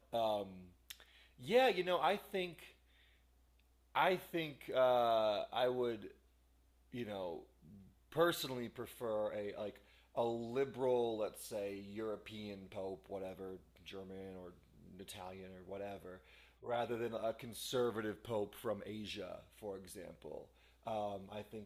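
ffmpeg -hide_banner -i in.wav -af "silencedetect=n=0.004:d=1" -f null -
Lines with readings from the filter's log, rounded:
silence_start: 2.67
silence_end: 3.95 | silence_duration: 1.28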